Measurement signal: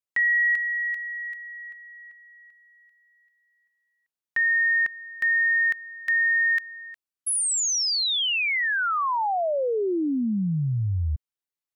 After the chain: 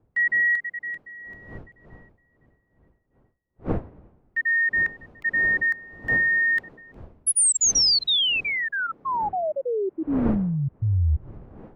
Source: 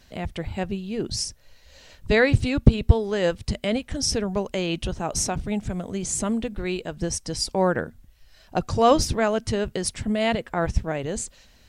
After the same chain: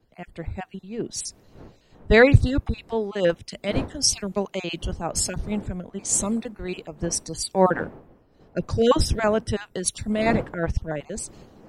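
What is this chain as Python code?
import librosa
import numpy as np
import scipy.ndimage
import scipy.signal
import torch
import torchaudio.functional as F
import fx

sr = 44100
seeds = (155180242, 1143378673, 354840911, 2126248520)

y = fx.spec_dropout(x, sr, seeds[0], share_pct=22)
y = fx.dmg_wind(y, sr, seeds[1], corner_hz=420.0, level_db=-40.0)
y = fx.band_widen(y, sr, depth_pct=70)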